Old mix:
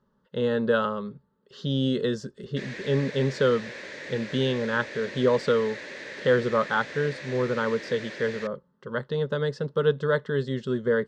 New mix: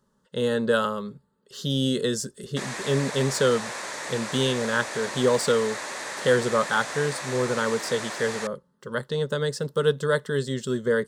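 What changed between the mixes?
background: add flat-topped bell 960 Hz +14.5 dB 1.2 octaves
master: remove high-frequency loss of the air 220 metres

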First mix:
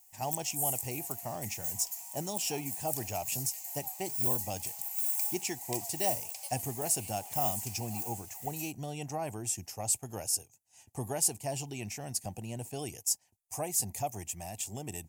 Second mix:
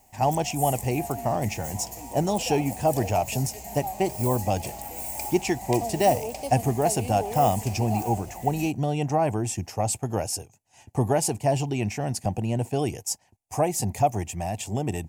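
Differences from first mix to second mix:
background: remove high-pass filter 830 Hz 24 dB per octave
master: remove first-order pre-emphasis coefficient 0.8

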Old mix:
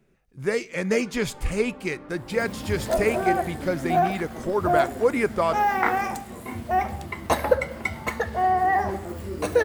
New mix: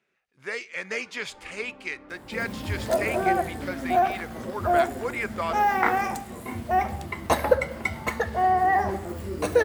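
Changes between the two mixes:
speech: add resonant band-pass 2,400 Hz, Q 0.72
first sound −5.0 dB

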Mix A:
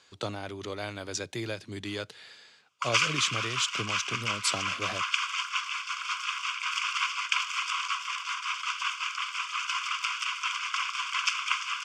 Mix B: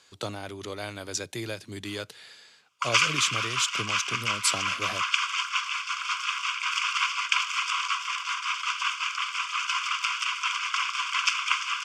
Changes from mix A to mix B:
speech: remove high-frequency loss of the air 50 metres
reverb: on, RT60 0.75 s

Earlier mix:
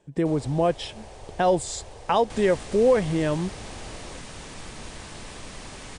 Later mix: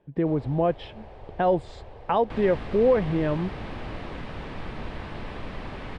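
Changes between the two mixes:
second sound +6.0 dB
master: add high-frequency loss of the air 400 metres

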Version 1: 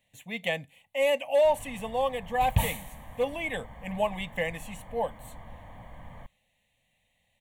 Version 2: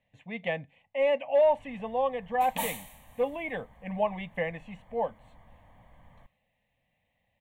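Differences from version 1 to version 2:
speech: add low-pass filter 2,000 Hz 12 dB per octave
first sound −10.5 dB
second sound: add linear-phase brick-wall high-pass 180 Hz

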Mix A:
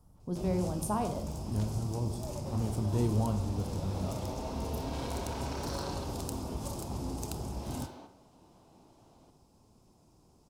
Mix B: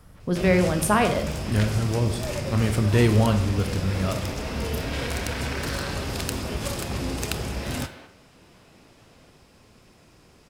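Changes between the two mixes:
speech +10.0 dB
first sound +7.5 dB
master: remove drawn EQ curve 330 Hz 0 dB, 520 Hz −5 dB, 890 Hz +2 dB, 1,800 Hz −20 dB, 6,200 Hz −2 dB

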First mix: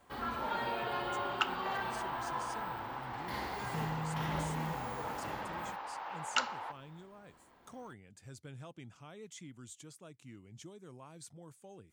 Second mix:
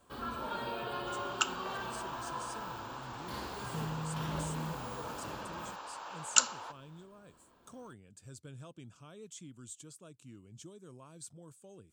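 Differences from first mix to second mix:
second sound: remove high-frequency loss of the air 200 metres
master: add thirty-one-band graphic EQ 800 Hz −8 dB, 2,000 Hz −12 dB, 8,000 Hz +6 dB

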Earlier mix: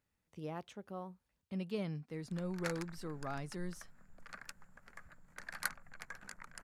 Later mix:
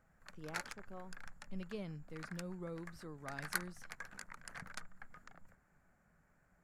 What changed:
speech −6.0 dB
background: entry −2.10 s

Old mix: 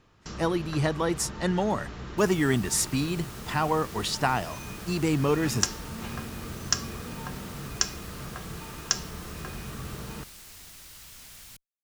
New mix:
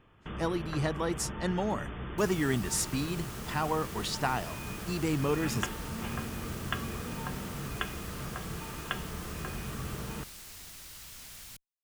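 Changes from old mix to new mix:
speech −5.0 dB
first sound: add linear-phase brick-wall low-pass 3,600 Hz

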